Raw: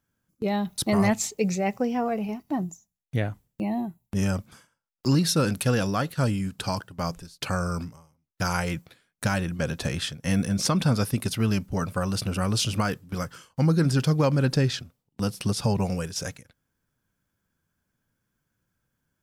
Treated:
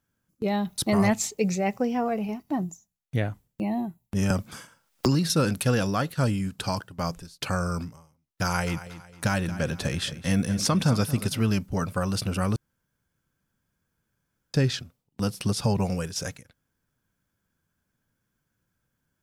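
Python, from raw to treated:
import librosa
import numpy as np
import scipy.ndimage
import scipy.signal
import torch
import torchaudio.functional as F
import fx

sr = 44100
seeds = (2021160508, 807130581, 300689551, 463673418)

y = fx.band_squash(x, sr, depth_pct=100, at=(4.3, 5.3))
y = fx.echo_feedback(y, sr, ms=228, feedback_pct=38, wet_db=-14.5, at=(8.44, 11.43))
y = fx.edit(y, sr, fx.room_tone_fill(start_s=12.56, length_s=1.98), tone=tone)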